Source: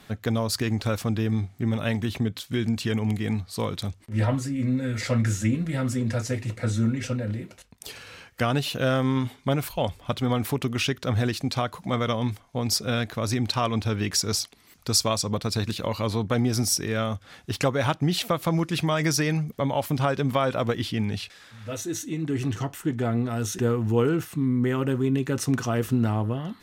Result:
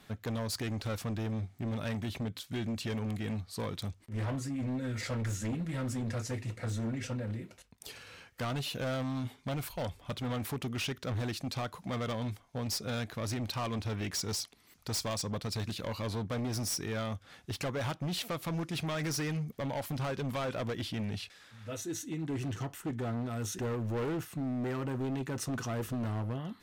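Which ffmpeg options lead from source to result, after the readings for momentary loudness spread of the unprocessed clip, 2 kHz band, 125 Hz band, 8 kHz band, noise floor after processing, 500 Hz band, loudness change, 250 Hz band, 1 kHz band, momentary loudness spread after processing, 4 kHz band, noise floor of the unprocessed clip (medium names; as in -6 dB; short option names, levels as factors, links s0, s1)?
7 LU, -9.5 dB, -9.5 dB, -9.5 dB, -62 dBFS, -10.5 dB, -10.0 dB, -10.0 dB, -10.5 dB, 5 LU, -9.5 dB, -55 dBFS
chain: -af "asoftclip=type=hard:threshold=0.0631,volume=0.447"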